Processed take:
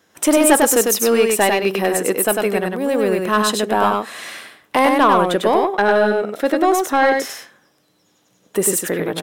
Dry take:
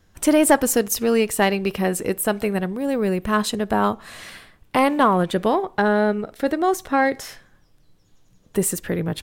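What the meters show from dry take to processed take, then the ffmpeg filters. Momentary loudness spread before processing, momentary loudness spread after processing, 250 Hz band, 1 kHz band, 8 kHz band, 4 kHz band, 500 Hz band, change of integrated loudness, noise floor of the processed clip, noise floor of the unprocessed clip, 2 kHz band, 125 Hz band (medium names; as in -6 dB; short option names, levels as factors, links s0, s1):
8 LU, 9 LU, +1.5 dB, +5.0 dB, +6.5 dB, +6.0 dB, +5.0 dB, +4.0 dB, -61 dBFS, -58 dBFS, +5.0 dB, -2.5 dB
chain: -filter_complex "[0:a]highpass=290,acontrast=38,bandreject=f=4500:w=15,asoftclip=type=tanh:threshold=0.631,asplit=2[s0][s1];[s1]aecho=0:1:99:0.668[s2];[s0][s2]amix=inputs=2:normalize=0"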